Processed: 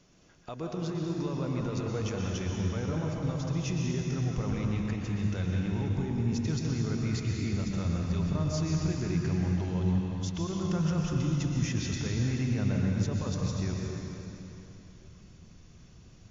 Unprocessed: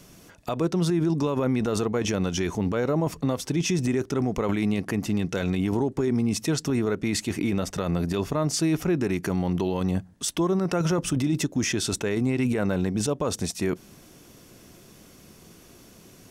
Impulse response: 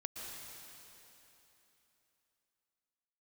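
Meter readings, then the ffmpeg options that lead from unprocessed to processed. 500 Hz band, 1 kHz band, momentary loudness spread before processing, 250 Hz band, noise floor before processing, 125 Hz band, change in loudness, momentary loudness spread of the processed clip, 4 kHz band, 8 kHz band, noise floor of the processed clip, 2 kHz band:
-10.5 dB, -9.0 dB, 4 LU, -6.5 dB, -51 dBFS, 0.0 dB, -5.0 dB, 5 LU, -8.0 dB, -10.0 dB, -54 dBFS, -8.0 dB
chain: -filter_complex "[0:a]asubboost=boost=5.5:cutoff=140[a];[1:a]atrim=start_sample=2205[b];[a][b]afir=irnorm=-1:irlink=0,volume=-7dB" -ar 16000 -c:a libmp3lame -b:a 48k

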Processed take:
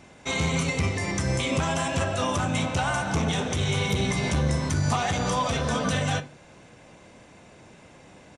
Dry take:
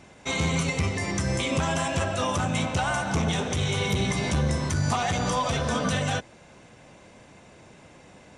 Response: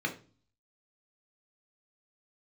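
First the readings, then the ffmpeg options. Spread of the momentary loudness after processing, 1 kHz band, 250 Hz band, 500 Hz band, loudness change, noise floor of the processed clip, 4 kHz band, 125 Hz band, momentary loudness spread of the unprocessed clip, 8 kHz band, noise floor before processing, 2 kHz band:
2 LU, 0.0 dB, +0.5 dB, +0.5 dB, +0.5 dB, -51 dBFS, 0.0 dB, +0.5 dB, 2 LU, 0.0 dB, -52 dBFS, +0.5 dB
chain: -filter_complex "[0:a]asplit=2[a][b];[1:a]atrim=start_sample=2205,adelay=30[c];[b][c]afir=irnorm=-1:irlink=0,volume=-17.5dB[d];[a][d]amix=inputs=2:normalize=0,aresample=32000,aresample=44100"

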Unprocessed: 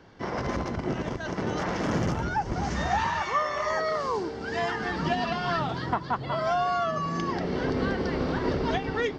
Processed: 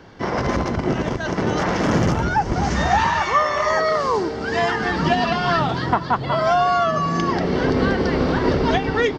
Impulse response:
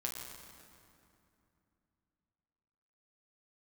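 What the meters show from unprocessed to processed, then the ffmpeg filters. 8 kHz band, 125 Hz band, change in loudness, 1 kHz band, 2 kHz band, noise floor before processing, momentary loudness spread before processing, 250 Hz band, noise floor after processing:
+8.5 dB, +8.5 dB, +8.5 dB, +8.5 dB, +8.5 dB, -37 dBFS, 4 LU, +8.5 dB, -28 dBFS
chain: -af "aecho=1:1:467:0.0841,volume=8.5dB"

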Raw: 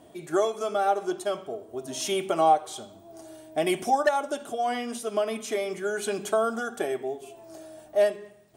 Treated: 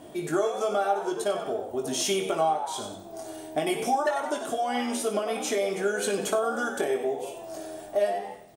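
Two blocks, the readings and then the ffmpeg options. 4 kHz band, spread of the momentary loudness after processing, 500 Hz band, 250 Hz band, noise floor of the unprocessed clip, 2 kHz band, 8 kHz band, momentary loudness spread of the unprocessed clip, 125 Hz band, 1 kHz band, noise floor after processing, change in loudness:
+2.0 dB, 10 LU, 0.0 dB, +1.5 dB, -52 dBFS, +1.0 dB, +3.5 dB, 19 LU, +2.0 dB, -2.0 dB, -44 dBFS, -0.5 dB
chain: -filter_complex "[0:a]asplit=2[a][b];[b]asplit=3[c][d][e];[c]adelay=94,afreqshift=83,volume=-11dB[f];[d]adelay=188,afreqshift=166,volume=-20.9dB[g];[e]adelay=282,afreqshift=249,volume=-30.8dB[h];[f][g][h]amix=inputs=3:normalize=0[i];[a][i]amix=inputs=2:normalize=0,acompressor=threshold=-32dB:ratio=3,asplit=2[j][k];[k]aecho=0:1:20|57:0.501|0.282[l];[j][l]amix=inputs=2:normalize=0,volume=5.5dB"

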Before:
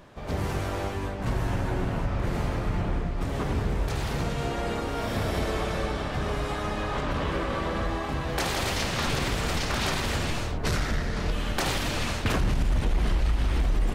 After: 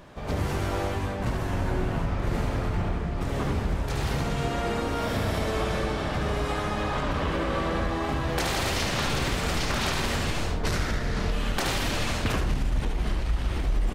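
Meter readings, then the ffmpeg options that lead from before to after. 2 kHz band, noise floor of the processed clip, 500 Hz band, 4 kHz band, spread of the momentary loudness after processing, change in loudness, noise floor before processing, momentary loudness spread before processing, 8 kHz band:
+1.0 dB, -30 dBFS, +1.0 dB, +1.0 dB, 3 LU, +0.5 dB, -32 dBFS, 3 LU, +0.5 dB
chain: -filter_complex "[0:a]acompressor=threshold=-25dB:ratio=6,asplit=2[a][b];[b]aecho=0:1:73:0.447[c];[a][c]amix=inputs=2:normalize=0,volume=2dB"

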